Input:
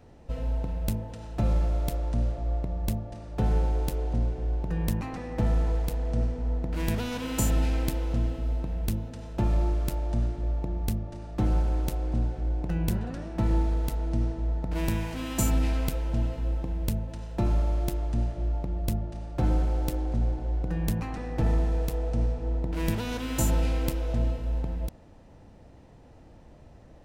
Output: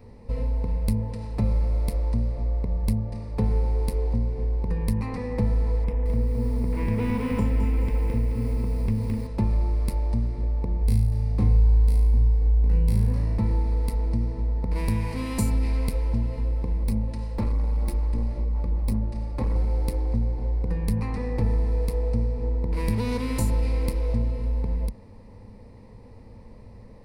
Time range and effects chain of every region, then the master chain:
5.84–9.27 polynomial smoothing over 25 samples + lo-fi delay 0.215 s, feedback 55%, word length 8-bit, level -4 dB
10.79–13.38 doubler 20 ms -3 dB + flutter echo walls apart 6.2 m, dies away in 0.7 s
16.8–19.56 hard clip -27 dBFS + comb 3.6 ms, depth 36%
whole clip: low shelf 440 Hz +5 dB; compressor 2.5:1, threshold -24 dBFS; ripple EQ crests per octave 0.91, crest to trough 11 dB

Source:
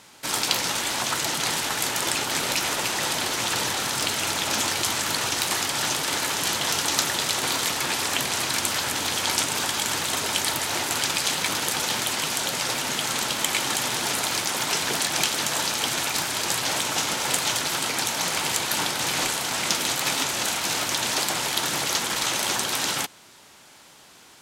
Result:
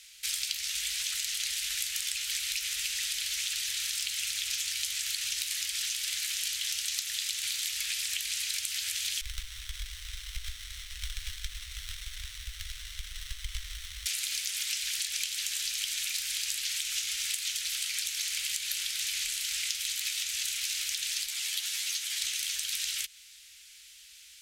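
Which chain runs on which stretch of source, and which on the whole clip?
9.21–14.06 brick-wall FIR band-pass 1900–5900 Hz + running maximum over 17 samples
21.26–22.22 HPF 280 Hz + band shelf 630 Hz +11 dB 1.2 oct + ensemble effect
whole clip: inverse Chebyshev band-stop 230–590 Hz, stop band 80 dB; compressor 10:1, threshold -29 dBFS

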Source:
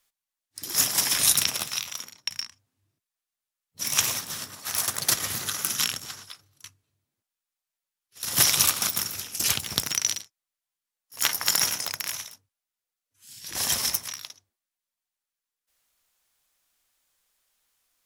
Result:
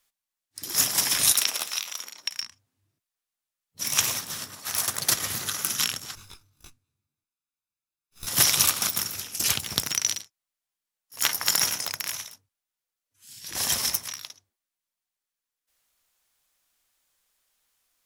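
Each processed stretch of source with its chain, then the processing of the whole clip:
1.32–2.42 HPF 370 Hz + upward compressor, threshold -31 dBFS
6.15–8.27 minimum comb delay 0.8 ms + low shelf 180 Hz +5 dB + detuned doubles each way 11 cents
whole clip: dry

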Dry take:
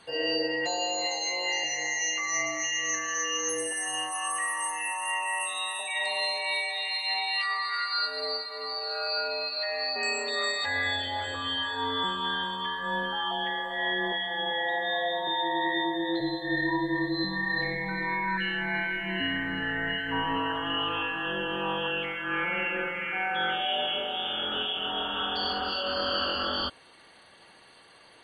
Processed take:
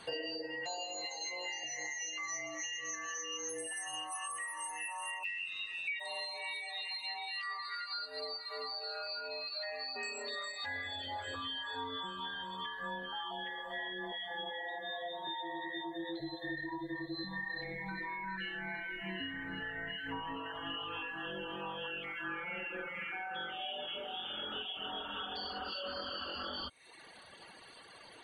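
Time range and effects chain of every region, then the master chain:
5.23–5.99 resonant high-pass 2400 Hz, resonance Q 10 + added noise white -45 dBFS + air absorption 160 m
whole clip: compressor, threshold -39 dBFS; reverb removal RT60 1 s; gain +2.5 dB

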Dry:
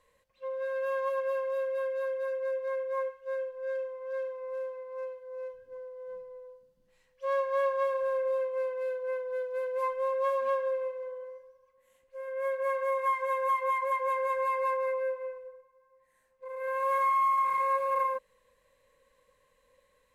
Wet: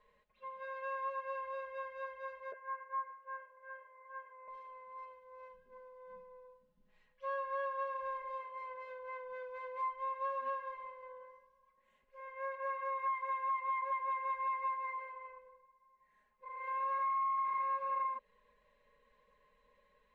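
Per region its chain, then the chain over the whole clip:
2.52–4.48 LPF 1600 Hz 24 dB/oct + tilt +4.5 dB/oct + doubler 12 ms -3.5 dB
whole clip: LPF 3100 Hz 12 dB/oct; comb 4.8 ms, depth 94%; compressor 2.5:1, threshold -33 dBFS; gain -4 dB

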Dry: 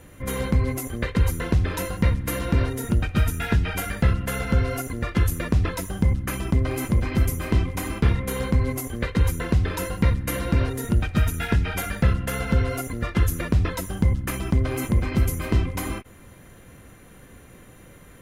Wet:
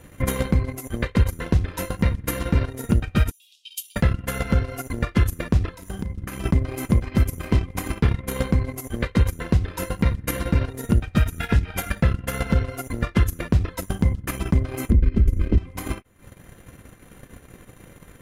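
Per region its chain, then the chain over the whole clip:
3.31–3.96 steep high-pass 2900 Hz 72 dB/oct + compressor 1.5:1, threshold -45 dBFS
5.74–6.44 compressor 8:1, threshold -29 dBFS + doubler 36 ms -10.5 dB
14.9–15.58 RIAA curve playback + compressor 3:1, threshold -4 dBFS + fixed phaser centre 330 Hz, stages 4
whole clip: transient shaper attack +11 dB, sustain -12 dB; limiter -8.5 dBFS

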